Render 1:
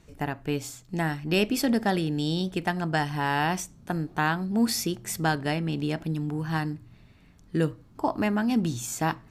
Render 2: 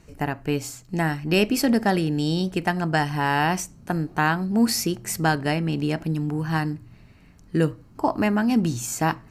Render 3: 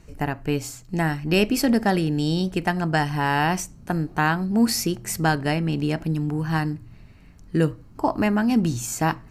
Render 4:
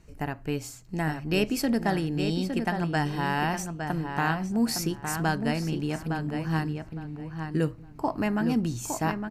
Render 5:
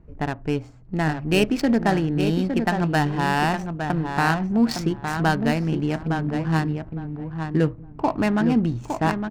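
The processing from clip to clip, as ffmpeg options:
-af "bandreject=f=3.5k:w=6.4,volume=4dB"
-af "lowshelf=f=61:g=8.5"
-filter_complex "[0:a]asplit=2[a][b];[b]adelay=861,lowpass=f=3.1k:p=1,volume=-6dB,asplit=2[c][d];[d]adelay=861,lowpass=f=3.1k:p=1,volume=0.21,asplit=2[e][f];[f]adelay=861,lowpass=f=3.1k:p=1,volume=0.21[g];[a][c][e][g]amix=inputs=4:normalize=0,volume=-6dB"
-af "adynamicsmooth=sensitivity=6:basefreq=980,volume=6dB"

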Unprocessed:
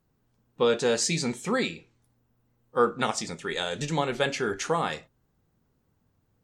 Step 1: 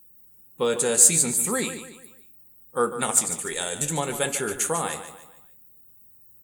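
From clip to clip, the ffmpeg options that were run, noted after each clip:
-filter_complex "[0:a]aexciter=amount=14.7:drive=8.6:freq=8k,asplit=2[a][b];[b]aecho=0:1:146|292|438|584:0.282|0.116|0.0474|0.0194[c];[a][c]amix=inputs=2:normalize=0,volume=-1dB"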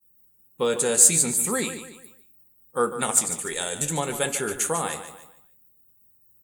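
-af "agate=range=-33dB:threshold=-46dB:ratio=3:detection=peak"

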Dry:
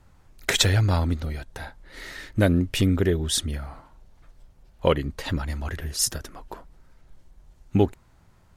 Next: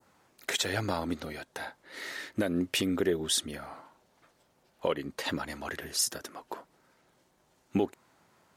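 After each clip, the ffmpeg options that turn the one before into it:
-af "highpass=270,adynamicequalizer=threshold=0.0112:dfrequency=2700:dqfactor=0.71:tfrequency=2700:tqfactor=0.71:attack=5:release=100:ratio=0.375:range=2:mode=cutabove:tftype=bell,alimiter=limit=-16.5dB:level=0:latency=1:release=186"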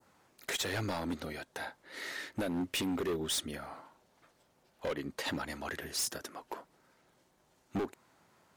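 -af "asoftclip=type=hard:threshold=-28.5dB,volume=-1.5dB"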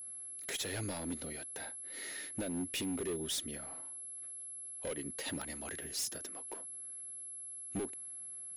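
-filter_complex "[0:a]aeval=exprs='val(0)+0.01*sin(2*PI*11000*n/s)':c=same,acrossover=split=840|1400[a][b][c];[b]acrusher=bits=5:mix=0:aa=0.000001[d];[a][d][c]amix=inputs=3:normalize=0,volume=-3.5dB"

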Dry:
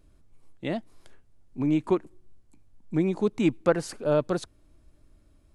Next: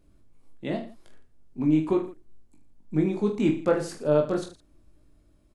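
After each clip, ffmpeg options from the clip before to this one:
-af "equalizer=f=280:t=o:w=2.1:g=3.5,aecho=1:1:20|45|76.25|115.3|164.1:0.631|0.398|0.251|0.158|0.1,volume=-4dB"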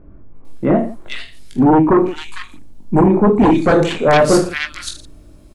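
-filter_complex "[0:a]aeval=exprs='0.355*sin(PI/2*3.98*val(0)/0.355)':c=same,acrossover=split=1800[a][b];[b]adelay=450[c];[a][c]amix=inputs=2:normalize=0,volume=2.5dB"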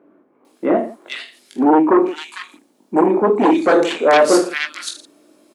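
-af "highpass=f=280:w=0.5412,highpass=f=280:w=1.3066"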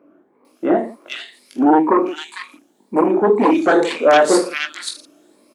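-af "afftfilt=real='re*pow(10,7/40*sin(2*PI*(0.93*log(max(b,1)*sr/1024/100)/log(2)-(2)*(pts-256)/sr)))':imag='im*pow(10,7/40*sin(2*PI*(0.93*log(max(b,1)*sr/1024/100)/log(2)-(2)*(pts-256)/sr)))':win_size=1024:overlap=0.75,volume=-1dB"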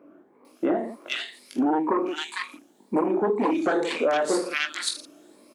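-af "acompressor=threshold=-21dB:ratio=6"

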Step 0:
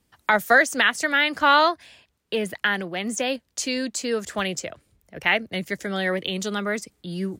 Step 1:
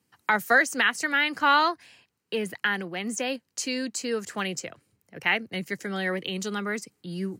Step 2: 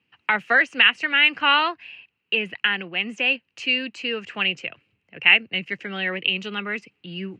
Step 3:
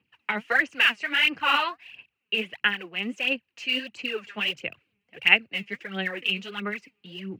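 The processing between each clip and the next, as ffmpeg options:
-af "highpass=f=100:w=0.5412,highpass=f=100:w=1.3066,equalizer=f=620:t=o:w=0.22:g=-8.5,bandreject=f=3.5k:w=8.6,volume=-3dB"
-af "lowpass=f=2.7k:t=q:w=8.9,volume=-1.5dB"
-af "aphaser=in_gain=1:out_gain=1:delay=5:decay=0.66:speed=1.5:type=sinusoidal,volume=-7dB"

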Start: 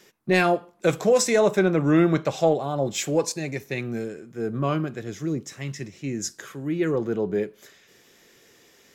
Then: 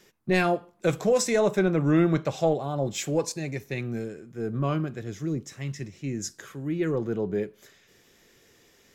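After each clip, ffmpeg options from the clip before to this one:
-af "lowshelf=f=98:g=12,volume=-4dB"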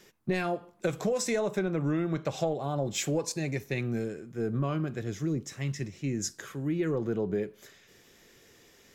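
-af "acompressor=threshold=-26dB:ratio=12,volume=1dB"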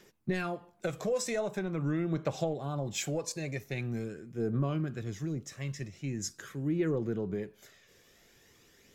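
-af "aphaser=in_gain=1:out_gain=1:delay=1.9:decay=0.35:speed=0.44:type=triangular,volume=-4dB"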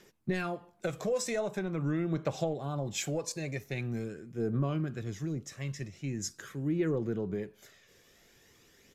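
-af "aresample=32000,aresample=44100"

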